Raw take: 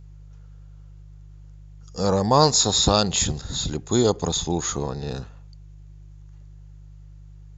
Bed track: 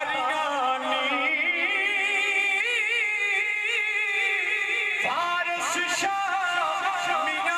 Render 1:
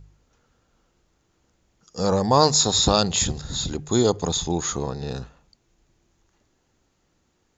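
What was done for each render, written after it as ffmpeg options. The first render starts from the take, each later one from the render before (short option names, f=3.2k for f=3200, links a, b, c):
-af "bandreject=f=50:t=h:w=4,bandreject=f=100:t=h:w=4,bandreject=f=150:t=h:w=4"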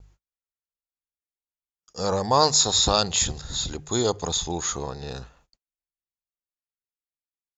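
-af "agate=range=-41dB:threshold=-55dB:ratio=16:detection=peak,equalizer=f=200:t=o:w=2.3:g=-7.5"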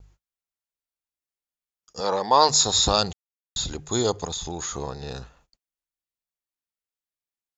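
-filter_complex "[0:a]asettb=1/sr,asplit=3[a][b][c];[a]atrim=end=2.004[d];[b]atrim=start=2:end=2.49,asetpts=PTS-STARTPTS,afade=t=in:d=0.004:c=qsin,afade=t=out:st=0.486:d=0.004:c=qsin,highpass=270,equalizer=f=930:t=q:w=4:g=5,equalizer=f=2k:t=q:w=4:g=4,equalizer=f=3.4k:t=q:w=4:g=6,lowpass=f=5.3k:w=0.5412,lowpass=f=5.3k:w=1.3066[e];[c]atrim=start=2.486[f];[d][e]acrossfade=d=0.004:c1=hsin:c2=qsin[g];[g][f]acrossfade=d=0.004:c1=qsin:c2=hsin,asplit=3[h][i][j];[h]afade=t=out:st=4.24:d=0.02[k];[i]acompressor=threshold=-27dB:ratio=6:attack=3.2:release=140:knee=1:detection=peak,afade=t=in:st=4.24:d=0.02,afade=t=out:st=4.75:d=0.02[l];[j]afade=t=in:st=4.75:d=0.02[m];[k][l][m]amix=inputs=3:normalize=0,asplit=3[n][o][p];[n]atrim=end=3.13,asetpts=PTS-STARTPTS,afade=t=out:st=3.126:d=0.004:c=hsin[q];[o]atrim=start=3.13:end=3.56,asetpts=PTS-STARTPTS,volume=0[r];[p]atrim=start=3.56,asetpts=PTS-STARTPTS,afade=t=in:d=0.004:c=hsin[s];[q][r][s]concat=n=3:v=0:a=1"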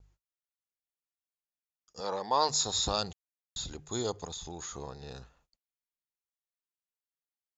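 -af "volume=-10dB"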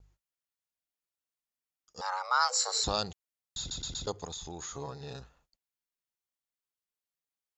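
-filter_complex "[0:a]asettb=1/sr,asplit=3[a][b][c];[a]atrim=end=2.014[d];[b]atrim=start=2.01:end=2.84,asetpts=PTS-STARTPTS,afade=t=in:d=0.004:c=qsin,afade=t=out:st=0.826:d=0.004:c=qsin,afreqshift=360[e];[c]atrim=start=2.836[f];[d][e]acrossfade=d=0.004:c1=hsin:c2=qsin[g];[g][f]acrossfade=d=0.004:c1=qsin:c2=hsin,asettb=1/sr,asplit=3[h][i][j];[h]atrim=end=4.744[k];[i]atrim=start=4.74:end=5.2,asetpts=PTS-STARTPTS,afade=t=in:d=0.004:c=qsin,afade=t=out:st=0.456:d=0.004:c=qsin,aecho=1:1:7.2:0.65,atrim=end_sample=20286[l];[j]atrim=start=5.196[m];[k][l]acrossfade=d=0.004:c1=hsin:c2=qsin[n];[n][m]acrossfade=d=0.004:c1=qsin:c2=hsin,asplit=5[o][p][q][r][s];[o]atrim=end=3.712[t];[p]atrim=start=3.588:end=3.712[u];[q]atrim=start=3.588:end=3.712[v];[r]atrim=start=3.588:end=3.712[w];[s]atrim=start=4.068[x];[t][u]acrossfade=d=0.004:c1=hsin:c2=hsin[y];[y][v]acrossfade=d=0.004:c1=hsin:c2=hsin[z];[z][w]acrossfade=d=0.004:c1=hsin:c2=hsin[aa];[aa][x]acrossfade=d=0.004:c1=hsin:c2=hsin"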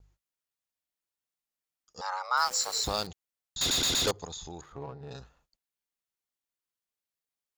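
-filter_complex "[0:a]asettb=1/sr,asplit=3[a][b][c];[a]atrim=end=2.374[d];[b]atrim=start=2.37:end=3.07,asetpts=PTS-STARTPTS,afade=t=in:d=0.004:c=qsin,afade=t=out:st=0.696:d=0.004:c=qsin,aeval=exprs='val(0)*gte(abs(val(0)),0.0133)':c=same[e];[c]atrim=start=3.066[f];[d][e]acrossfade=d=0.004:c1=hsin:c2=qsin[g];[g][f]acrossfade=d=0.004:c1=qsin:c2=hsin,asettb=1/sr,asplit=3[h][i][j];[h]atrim=end=3.614[k];[i]atrim=start=3.61:end=4.11,asetpts=PTS-STARTPTS,afade=t=in:d=0.004:c=qsin,afade=t=out:st=0.496:d=0.004:c=qsin,asplit=2[l][m];[m]highpass=f=720:p=1,volume=35dB,asoftclip=type=tanh:threshold=-18.5dB[n];[l][n]amix=inputs=2:normalize=0,lowpass=f=6.1k:p=1,volume=-6dB[o];[j]atrim=start=4.106[p];[k][o]acrossfade=d=0.004:c1=hsin:c2=qsin[q];[q][p]acrossfade=d=0.004:c1=qsin:c2=hsin,asettb=1/sr,asplit=3[r][s][t];[r]atrim=end=4.614[u];[s]atrim=start=4.61:end=5.11,asetpts=PTS-STARTPTS,afade=t=in:d=0.004:c=qsin,afade=t=out:st=0.496:d=0.004:c=qsin,adynamicsmooth=sensitivity=4.5:basefreq=1.1k[v];[t]atrim=start=5.106[w];[u][v]acrossfade=d=0.004:c1=hsin:c2=qsin[x];[x][w]acrossfade=d=0.004:c1=qsin:c2=hsin"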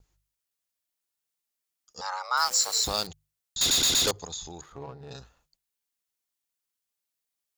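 -af "highshelf=f=3.4k:g=7,bandreject=f=50:t=h:w=6,bandreject=f=100:t=h:w=6,bandreject=f=150:t=h:w=6"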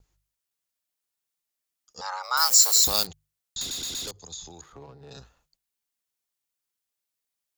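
-filter_complex "[0:a]asettb=1/sr,asplit=3[a][b][c];[a]atrim=end=2.234[d];[b]atrim=start=2.23:end=3.05,asetpts=PTS-STARTPTS,afade=t=in:d=0.004:c=qsin,afade=t=out:st=0.816:d=0.004:c=qsin,aemphasis=mode=production:type=50fm[e];[c]atrim=start=3.046[f];[d][e]acrossfade=d=0.004:c1=hsin:c2=qsin[g];[g][f]acrossfade=d=0.004:c1=qsin:c2=hsin,asettb=1/sr,asplit=3[h][i][j];[h]atrim=end=3.604[k];[i]atrim=start=3.6:end=5.17,asetpts=PTS-STARTPTS,afade=t=in:d=0.004:c=qsin,afade=t=out:st=1.566:d=0.004:c=qsin,acrossover=split=81|170|400|3200[l][m][n][o][p];[l]acompressor=threshold=-53dB:ratio=3[q];[m]acompressor=threshold=-58dB:ratio=3[r];[n]acompressor=threshold=-50dB:ratio=3[s];[o]acompressor=threshold=-49dB:ratio=3[t];[p]acompressor=threshold=-35dB:ratio=3[u];[q][r][s][t][u]amix=inputs=5:normalize=0[v];[j]atrim=start=5.166[w];[k][v]acrossfade=d=0.004:c1=hsin:c2=qsin[x];[x][w]acrossfade=d=0.004:c1=qsin:c2=hsin"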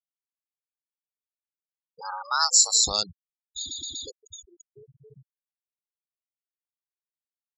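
-af "lowpass=10k,afftfilt=real='re*gte(hypot(re,im),0.0398)':imag='im*gte(hypot(re,im),0.0398)':win_size=1024:overlap=0.75"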